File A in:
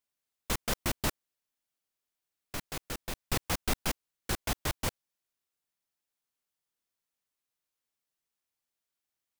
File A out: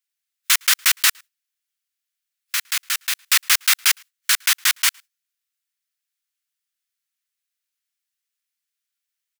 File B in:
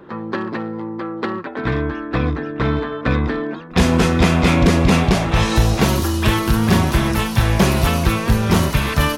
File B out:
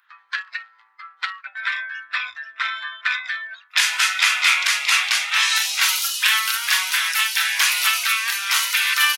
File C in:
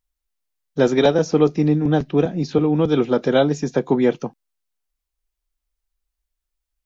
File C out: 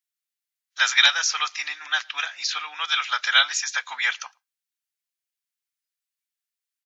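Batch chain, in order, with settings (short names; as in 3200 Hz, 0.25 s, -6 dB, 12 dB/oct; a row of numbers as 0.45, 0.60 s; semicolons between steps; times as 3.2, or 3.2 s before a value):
inverse Chebyshev high-pass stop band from 430 Hz, stop band 60 dB; outdoor echo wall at 19 m, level -30 dB; spectral noise reduction 14 dB; normalise peaks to -1.5 dBFS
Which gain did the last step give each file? +19.0, +7.0, +12.5 dB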